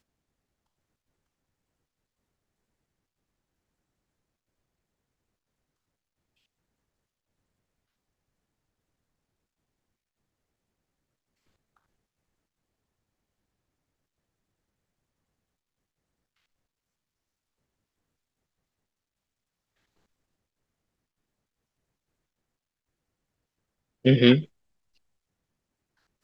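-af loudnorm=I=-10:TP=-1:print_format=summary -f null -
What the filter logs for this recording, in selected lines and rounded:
Input Integrated:    -20.9 LUFS
Input True Peak:      -3.7 dBTP
Input LRA:             0.5 LU
Input Threshold:     -31.4 LUFS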